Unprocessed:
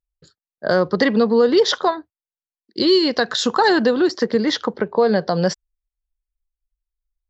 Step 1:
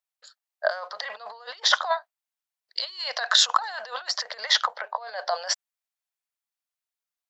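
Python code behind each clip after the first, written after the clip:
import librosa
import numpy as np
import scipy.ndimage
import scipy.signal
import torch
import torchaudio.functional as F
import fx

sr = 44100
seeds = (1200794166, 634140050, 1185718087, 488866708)

y = fx.over_compress(x, sr, threshold_db=-21.0, ratio=-0.5)
y = scipy.signal.sosfilt(scipy.signal.ellip(4, 1.0, 50, 640.0, 'highpass', fs=sr, output='sos'), y)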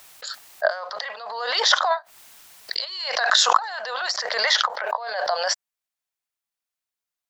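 y = fx.dynamic_eq(x, sr, hz=3300.0, q=1.6, threshold_db=-35.0, ratio=4.0, max_db=-3)
y = fx.pre_swell(y, sr, db_per_s=40.0)
y = y * librosa.db_to_amplitude(2.0)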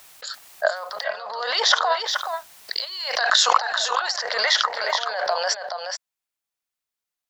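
y = x + 10.0 ** (-7.0 / 20.0) * np.pad(x, (int(425 * sr / 1000.0), 0))[:len(x)]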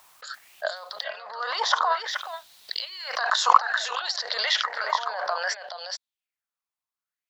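y = fx.bell_lfo(x, sr, hz=0.59, low_hz=970.0, high_hz=4000.0, db=12)
y = y * librosa.db_to_amplitude(-8.5)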